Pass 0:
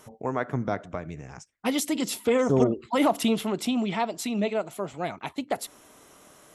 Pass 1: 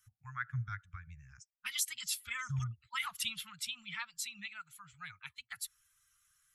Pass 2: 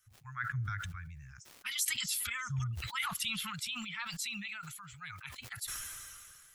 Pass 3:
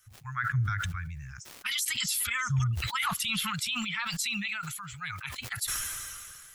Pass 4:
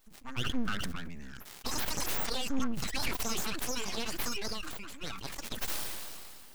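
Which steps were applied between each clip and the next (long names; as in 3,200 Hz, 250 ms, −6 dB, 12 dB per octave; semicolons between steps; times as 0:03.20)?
spectral dynamics exaggerated over time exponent 1.5; elliptic band-stop filter 120–1,400 Hz, stop band 50 dB; level −1 dB
surface crackle 590 per second −73 dBFS; level that may fall only so fast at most 26 dB per second
brickwall limiter −28.5 dBFS, peak gain reduction 9.5 dB; level +8.5 dB
full-wave rectification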